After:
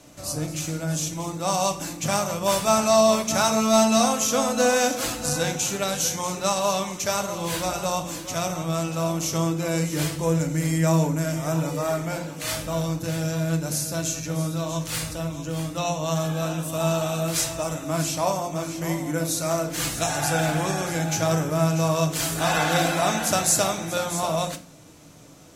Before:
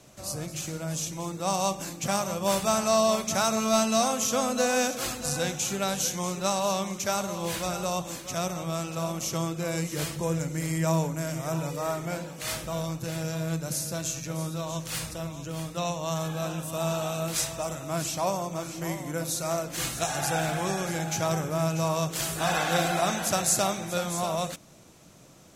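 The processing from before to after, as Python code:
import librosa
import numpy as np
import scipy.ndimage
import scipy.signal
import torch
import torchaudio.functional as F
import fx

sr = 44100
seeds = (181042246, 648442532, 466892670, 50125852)

y = fx.rev_fdn(x, sr, rt60_s=0.4, lf_ratio=1.45, hf_ratio=0.8, size_ms=20.0, drr_db=5.5)
y = y * 10.0 ** (3.0 / 20.0)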